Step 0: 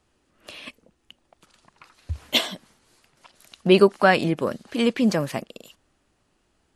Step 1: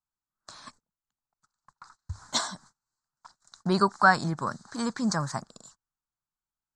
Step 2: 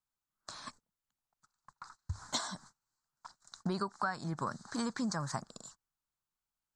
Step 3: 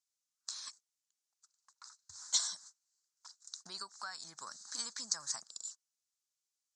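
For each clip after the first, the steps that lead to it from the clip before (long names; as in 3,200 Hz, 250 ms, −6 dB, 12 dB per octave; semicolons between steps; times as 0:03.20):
drawn EQ curve 130 Hz 0 dB, 290 Hz −13 dB, 530 Hz −17 dB, 900 Hz +1 dB, 1,500 Hz +1 dB, 2,800 Hz −30 dB, 4,000 Hz −4 dB, 7,700 Hz +4 dB, 12,000 Hz −28 dB; noise gate −55 dBFS, range −27 dB; parametric band 75 Hz −13.5 dB 0.64 octaves; level +2 dB
downward compressor 8 to 1, threshold −32 dBFS, peak gain reduction 18 dB
resonant band-pass 6,200 Hz, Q 1.9; level +9.5 dB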